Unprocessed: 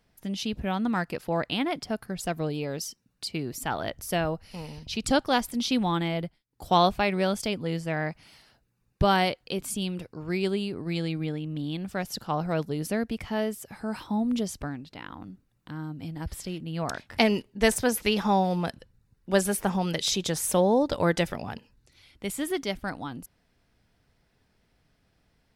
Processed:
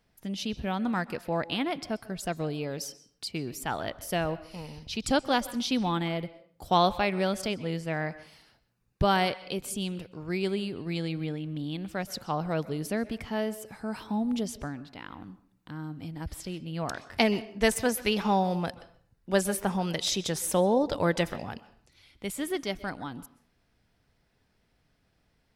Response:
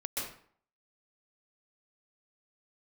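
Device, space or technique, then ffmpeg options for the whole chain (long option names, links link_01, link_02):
filtered reverb send: -filter_complex "[0:a]asplit=2[link_01][link_02];[link_02]highpass=frequency=330:poles=1,lowpass=7300[link_03];[1:a]atrim=start_sample=2205[link_04];[link_03][link_04]afir=irnorm=-1:irlink=0,volume=-18dB[link_05];[link_01][link_05]amix=inputs=2:normalize=0,volume=-2.5dB"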